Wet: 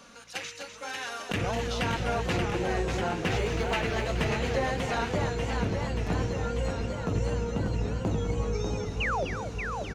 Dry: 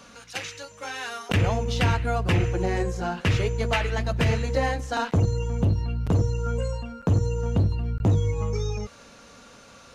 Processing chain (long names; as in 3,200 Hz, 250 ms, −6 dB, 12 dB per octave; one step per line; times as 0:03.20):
parametric band 84 Hz −12.5 dB 0.75 octaves
in parallel at −1 dB: brickwall limiter −20 dBFS, peak gain reduction 7.5 dB
0:03.23–0:04.04: on the sum: log-companded quantiser 8 bits
0:09.00–0:09.25: sound drawn into the spectrogram fall 460–3,100 Hz −21 dBFS
single-tap delay 252 ms −9 dB
feedback echo with a swinging delay time 588 ms, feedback 71%, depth 190 cents, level −5.5 dB
level −8.5 dB